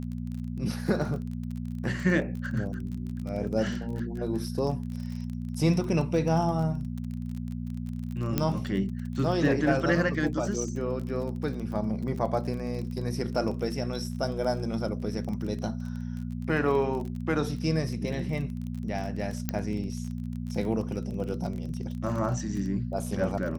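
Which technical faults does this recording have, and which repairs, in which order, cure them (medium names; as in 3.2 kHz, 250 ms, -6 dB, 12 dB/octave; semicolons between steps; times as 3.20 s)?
crackle 28 per s -34 dBFS
hum 60 Hz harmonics 4 -34 dBFS
8.38 s: pop -11 dBFS
19.49 s: pop -13 dBFS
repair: de-click; de-hum 60 Hz, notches 4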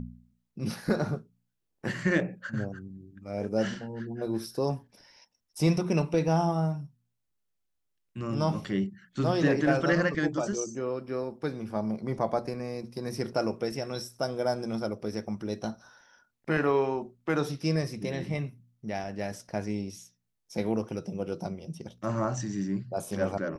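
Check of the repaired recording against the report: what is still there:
nothing left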